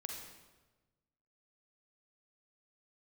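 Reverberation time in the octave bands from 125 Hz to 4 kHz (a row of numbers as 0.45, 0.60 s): 1.7, 1.4, 1.3, 1.1, 1.0, 0.95 s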